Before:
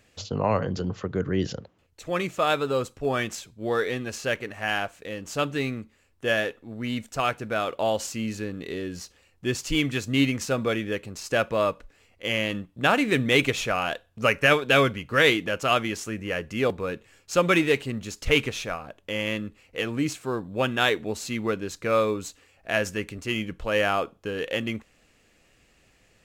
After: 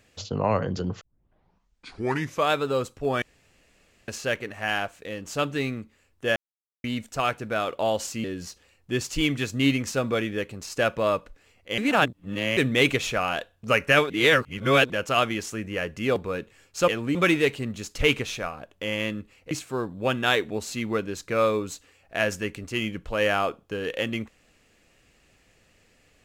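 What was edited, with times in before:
1.01 s: tape start 1.49 s
3.22–4.08 s: room tone
6.36–6.84 s: mute
8.24–8.78 s: delete
12.32–13.11 s: reverse
14.64–15.44 s: reverse
19.78–20.05 s: move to 17.42 s

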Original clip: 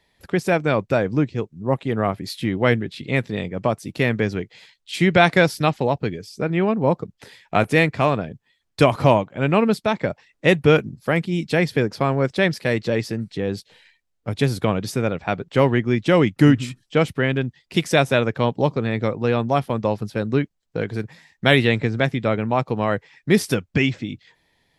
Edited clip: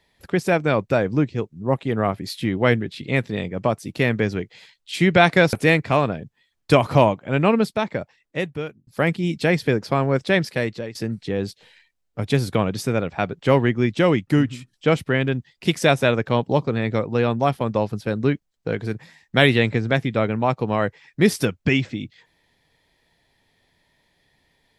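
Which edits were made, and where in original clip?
5.53–7.62 s: delete
9.61–10.96 s: fade out
12.59–13.04 s: fade out, to -18 dB
15.92–16.82 s: fade out, to -9 dB

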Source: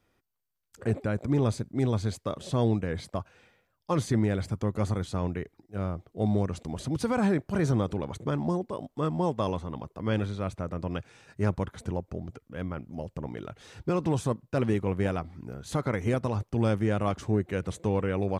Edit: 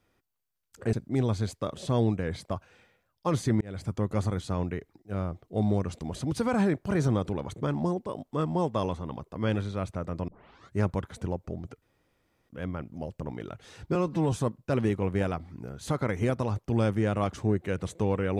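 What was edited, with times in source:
0.93–1.57 s: delete
4.25–4.55 s: fade in
10.92 s: tape start 0.48 s
12.46 s: insert room tone 0.67 s
13.92–14.17 s: stretch 1.5×

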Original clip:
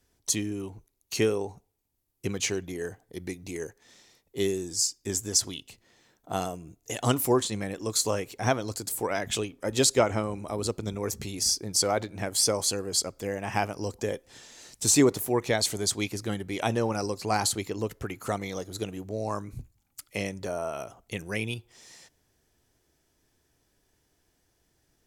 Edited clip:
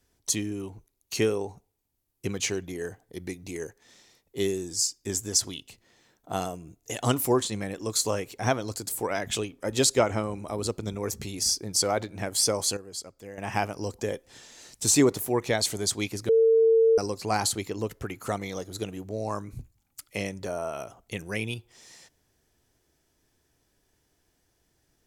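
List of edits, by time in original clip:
12.77–13.38 s: gain -10.5 dB
16.29–16.98 s: bleep 451 Hz -16 dBFS

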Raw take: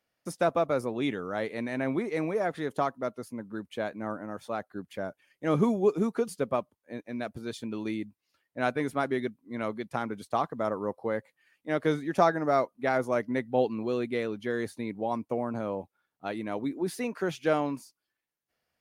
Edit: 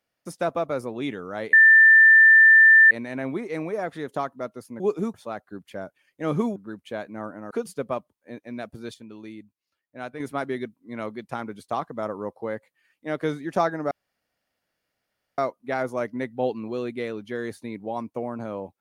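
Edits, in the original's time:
1.53 s: add tone 1.78 kHz -9.5 dBFS 1.38 s
3.42–4.37 s: swap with 5.79–6.13 s
7.56–8.82 s: gain -7.5 dB
12.53 s: insert room tone 1.47 s

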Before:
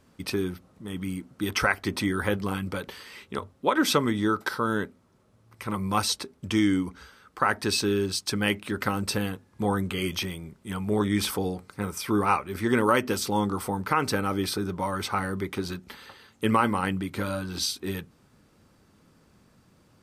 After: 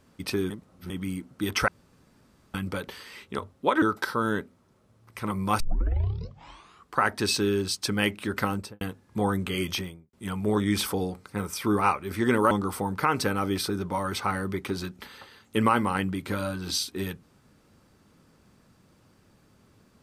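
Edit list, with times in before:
0.50–0.90 s: reverse
1.68–2.54 s: room tone
3.82–4.26 s: delete
6.04 s: tape start 1.38 s
8.93–9.25 s: studio fade out
10.18–10.57 s: studio fade out
12.95–13.39 s: delete

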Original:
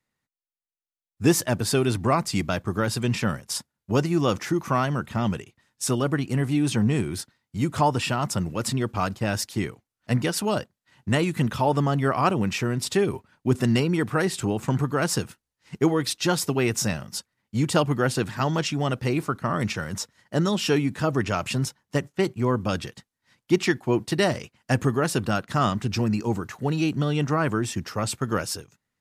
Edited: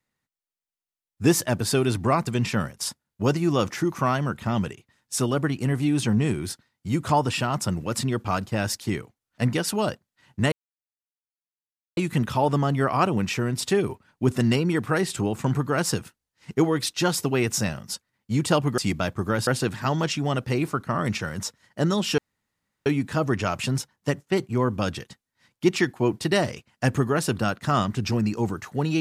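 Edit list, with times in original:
2.27–2.96 s: move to 18.02 s
11.21 s: insert silence 1.45 s
20.73 s: insert room tone 0.68 s

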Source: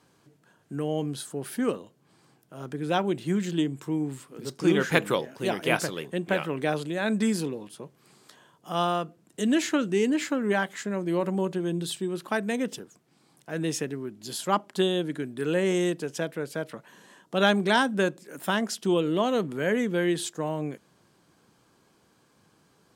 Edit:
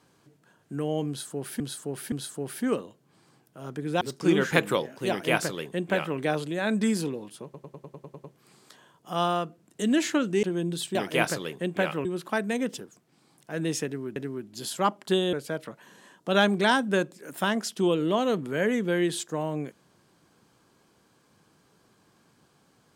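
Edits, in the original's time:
1.08–1.60 s: loop, 3 plays
2.97–4.40 s: delete
5.47–6.57 s: copy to 12.04 s
7.83 s: stutter 0.10 s, 9 plays
10.02–11.52 s: delete
13.84–14.15 s: loop, 2 plays
15.01–16.39 s: delete

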